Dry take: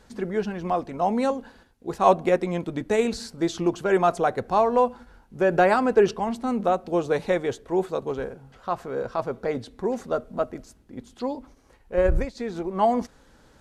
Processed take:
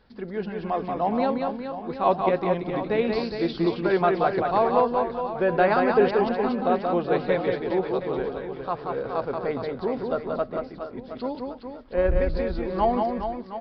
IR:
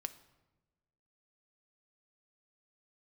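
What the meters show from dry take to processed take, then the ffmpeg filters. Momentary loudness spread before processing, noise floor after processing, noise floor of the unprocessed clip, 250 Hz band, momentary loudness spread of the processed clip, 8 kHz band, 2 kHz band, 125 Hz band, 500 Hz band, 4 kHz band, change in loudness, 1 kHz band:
12 LU, -41 dBFS, -57 dBFS, 0.0 dB, 11 LU, under -25 dB, 0.0 dB, +0.5 dB, 0.0 dB, 0.0 dB, -0.5 dB, 0.0 dB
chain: -af "aresample=11025,aresample=44100,dynaudnorm=f=110:g=11:m=4dB,aecho=1:1:180|414|718.2|1114|1628:0.631|0.398|0.251|0.158|0.1,volume=-5.5dB"

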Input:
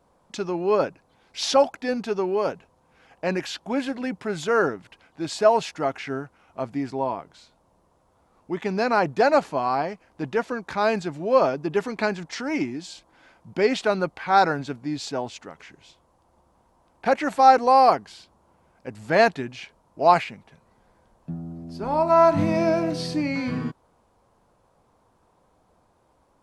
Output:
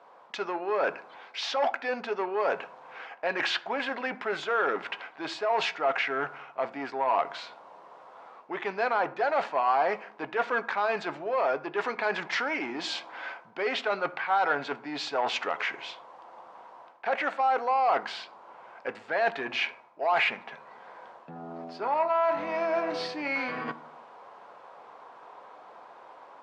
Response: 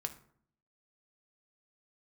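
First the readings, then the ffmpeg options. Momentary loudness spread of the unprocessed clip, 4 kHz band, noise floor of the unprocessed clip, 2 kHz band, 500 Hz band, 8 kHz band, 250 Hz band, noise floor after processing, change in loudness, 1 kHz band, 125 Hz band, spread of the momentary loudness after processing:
17 LU, -1.0 dB, -64 dBFS, +0.5 dB, -7.0 dB, -10.0 dB, -12.5 dB, -52 dBFS, -6.0 dB, -5.5 dB, -19.0 dB, 20 LU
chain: -filter_complex "[0:a]dynaudnorm=f=330:g=3:m=5.5dB,alimiter=limit=-9dB:level=0:latency=1:release=23,areverse,acompressor=threshold=-30dB:ratio=20,areverse,asoftclip=type=tanh:threshold=-27.5dB,highpass=690,lowpass=2.8k,asplit=2[a][b];[1:a]atrim=start_sample=2205,highshelf=f=7.6k:g=-9[c];[b][c]afir=irnorm=-1:irlink=0,volume=2.5dB[d];[a][d]amix=inputs=2:normalize=0,volume=6.5dB"

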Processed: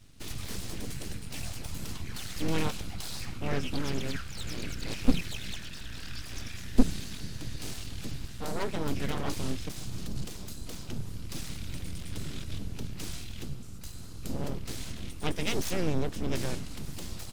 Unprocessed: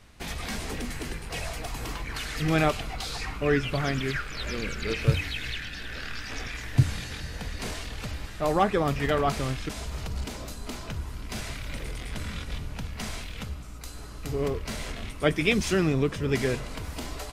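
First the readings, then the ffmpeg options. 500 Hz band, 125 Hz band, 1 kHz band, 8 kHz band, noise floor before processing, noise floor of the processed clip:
-9.0 dB, -6.5 dB, -10.0 dB, -1.5 dB, -40 dBFS, -40 dBFS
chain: -af "equalizer=f=125:t=o:w=1:g=4,equalizer=f=500:t=o:w=1:g=-12,equalizer=f=1k:t=o:w=1:g=-8,equalizer=f=2k:t=o:w=1:g=-8,aeval=exprs='abs(val(0))':c=same"

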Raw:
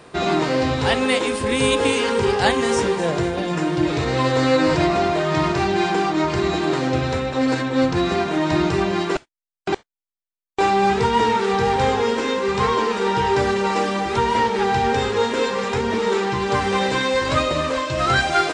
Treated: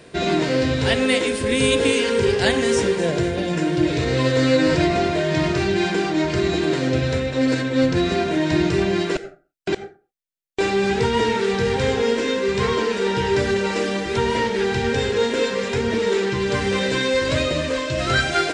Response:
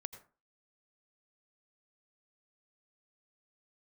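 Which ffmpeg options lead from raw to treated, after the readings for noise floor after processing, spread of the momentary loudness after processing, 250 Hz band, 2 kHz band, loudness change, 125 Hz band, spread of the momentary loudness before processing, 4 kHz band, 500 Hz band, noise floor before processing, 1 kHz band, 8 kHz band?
-53 dBFS, 4 LU, +0.5 dB, 0.0 dB, -0.5 dB, +1.5 dB, 4 LU, +1.0 dB, +0.5 dB, under -85 dBFS, -7.0 dB, +1.0 dB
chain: -filter_complex "[0:a]asplit=2[a][b];[b]asuperstop=centerf=1000:order=8:qfactor=2.4[c];[1:a]atrim=start_sample=2205[d];[c][d]afir=irnorm=-1:irlink=0,volume=6dB[e];[a][e]amix=inputs=2:normalize=0,volume=-6.5dB"

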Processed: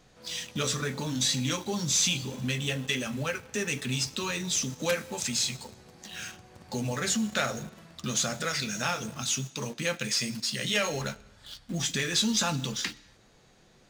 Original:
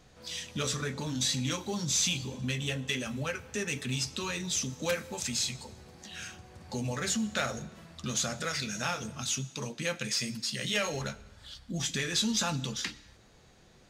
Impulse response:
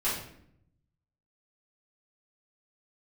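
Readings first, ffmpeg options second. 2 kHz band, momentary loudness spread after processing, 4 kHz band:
+3.0 dB, 13 LU, +3.0 dB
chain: -filter_complex "[0:a]equalizer=f=71:t=o:w=0.66:g=-9.5,asplit=2[a][b];[b]acrusher=bits=6:mix=0:aa=0.000001,volume=-8dB[c];[a][c]amix=inputs=2:normalize=0"

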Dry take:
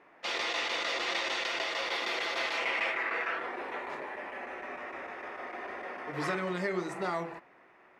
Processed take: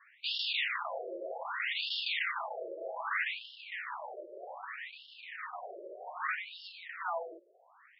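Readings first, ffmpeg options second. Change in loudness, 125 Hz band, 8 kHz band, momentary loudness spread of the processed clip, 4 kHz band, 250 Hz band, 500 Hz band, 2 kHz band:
-3.5 dB, under -40 dB, under -35 dB, 14 LU, -1.0 dB, -16.5 dB, -6.0 dB, -3.5 dB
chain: -af "aeval=exprs='if(lt(val(0),0),0.251*val(0),val(0))':c=same,asubboost=boost=8:cutoff=140,afftfilt=real='re*between(b*sr/1024,450*pow(3900/450,0.5+0.5*sin(2*PI*0.64*pts/sr))/1.41,450*pow(3900/450,0.5+0.5*sin(2*PI*0.64*pts/sr))*1.41)':imag='im*between(b*sr/1024,450*pow(3900/450,0.5+0.5*sin(2*PI*0.64*pts/sr))/1.41,450*pow(3900/450,0.5+0.5*sin(2*PI*0.64*pts/sr))*1.41)':win_size=1024:overlap=0.75,volume=7dB"

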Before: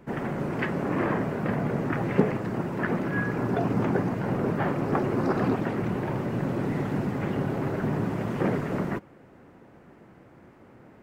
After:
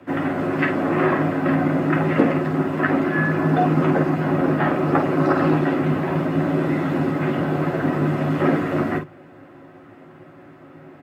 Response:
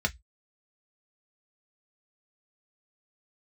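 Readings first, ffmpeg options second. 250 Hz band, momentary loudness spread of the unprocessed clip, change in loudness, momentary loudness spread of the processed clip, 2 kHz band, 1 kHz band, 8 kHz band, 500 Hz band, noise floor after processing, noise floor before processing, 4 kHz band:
+8.0 dB, 4 LU, +7.5 dB, 4 LU, +8.5 dB, +8.5 dB, n/a, +6.5 dB, -45 dBFS, -53 dBFS, +7.5 dB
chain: -filter_complex "[0:a]afreqshift=39,aecho=1:1:11|51:0.631|0.447,asplit=2[a][b];[1:a]atrim=start_sample=2205,asetrate=88200,aresample=44100[c];[b][c]afir=irnorm=-1:irlink=0,volume=-6.5dB[d];[a][d]amix=inputs=2:normalize=0,volume=3.5dB"

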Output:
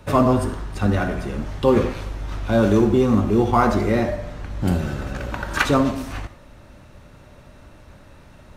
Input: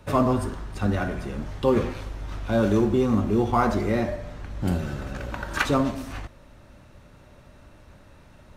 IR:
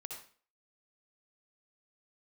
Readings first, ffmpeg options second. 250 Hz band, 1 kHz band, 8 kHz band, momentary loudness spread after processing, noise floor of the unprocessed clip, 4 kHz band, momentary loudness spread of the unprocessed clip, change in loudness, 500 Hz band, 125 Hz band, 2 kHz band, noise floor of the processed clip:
+4.5 dB, +4.5 dB, +4.5 dB, 14 LU, -51 dBFS, +4.5 dB, 14 LU, +4.5 dB, +4.5 dB, +4.5 dB, +4.5 dB, -47 dBFS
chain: -filter_complex "[0:a]asplit=2[a][b];[1:a]atrim=start_sample=2205[c];[b][c]afir=irnorm=-1:irlink=0,volume=-6.5dB[d];[a][d]amix=inputs=2:normalize=0,volume=2.5dB"

